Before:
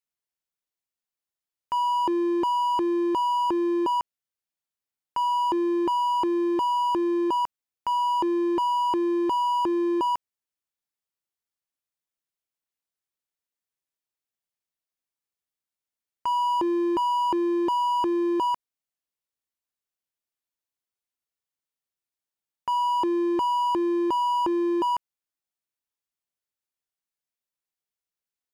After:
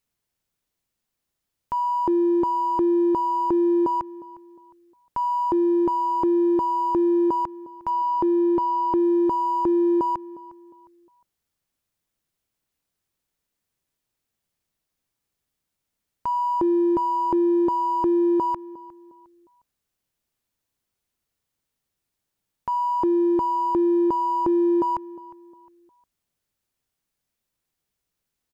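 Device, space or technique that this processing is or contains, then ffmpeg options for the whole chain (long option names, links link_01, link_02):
soft clipper into limiter: -filter_complex "[0:a]asettb=1/sr,asplit=3[link_01][link_02][link_03];[link_01]atrim=end=7.904[link_04];[link_02]atrim=start=7.9:end=9,asetpts=PTS-STARTPTS,afade=type=in:duration=0.004:curve=qsin,afade=type=out:start_time=1.096:duration=0.004:curve=qsin,lowpass=6200[link_05];[link_03]atrim=start=8.996[link_06];[link_04][link_05]acrossfade=duration=0.004:curve1=hsin:curve2=qsin[link_07];[link_07][link_06]acrossfade=duration=0.004:curve1=qsin:curve2=hsin,asoftclip=type=tanh:threshold=-21dB,alimiter=level_in=5.5dB:limit=-24dB:level=0:latency=1,volume=-5.5dB,lowshelf=frequency=300:gain=11.5,asplit=2[link_08][link_09];[link_09]adelay=357,lowpass=frequency=3300:poles=1,volume=-19.5dB,asplit=2[link_10][link_11];[link_11]adelay=357,lowpass=frequency=3300:poles=1,volume=0.36,asplit=2[link_12][link_13];[link_13]adelay=357,lowpass=frequency=3300:poles=1,volume=0.36[link_14];[link_08][link_10][link_12][link_14]amix=inputs=4:normalize=0,volume=8.5dB"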